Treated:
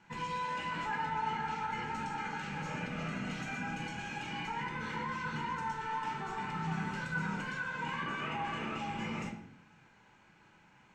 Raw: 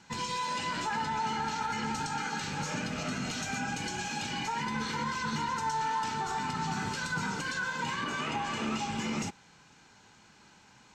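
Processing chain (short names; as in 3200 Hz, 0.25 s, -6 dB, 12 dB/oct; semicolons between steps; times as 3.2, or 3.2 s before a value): resonant high shelf 3300 Hz -8.5 dB, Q 1.5; reverb RT60 0.65 s, pre-delay 6 ms, DRR 1.5 dB; gain -6.5 dB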